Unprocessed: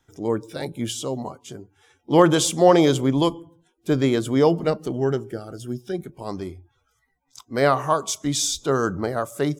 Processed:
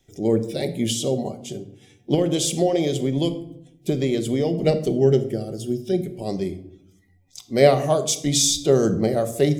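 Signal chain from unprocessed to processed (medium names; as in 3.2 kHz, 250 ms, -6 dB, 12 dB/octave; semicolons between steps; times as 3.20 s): high-order bell 1.2 kHz -15.5 dB 1.1 oct; 2.14–4.59 s: compression, threshold -23 dBFS, peak gain reduction 12.5 dB; reverberation RT60 0.75 s, pre-delay 5 ms, DRR 7.5 dB; trim +4 dB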